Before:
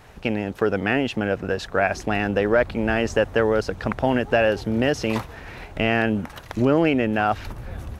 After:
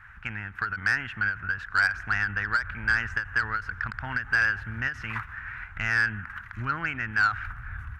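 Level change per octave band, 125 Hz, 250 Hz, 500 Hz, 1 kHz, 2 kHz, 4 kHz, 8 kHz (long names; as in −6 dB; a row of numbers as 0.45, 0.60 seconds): −7.5 dB, −20.0 dB, −28.0 dB, −5.0 dB, +3.0 dB, −7.5 dB, can't be measured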